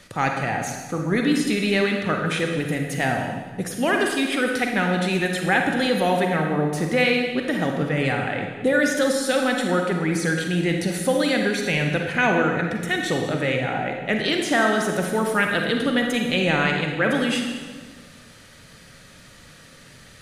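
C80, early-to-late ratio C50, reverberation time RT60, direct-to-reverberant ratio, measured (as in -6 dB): 5.0 dB, 3.0 dB, 1.5 s, 2.0 dB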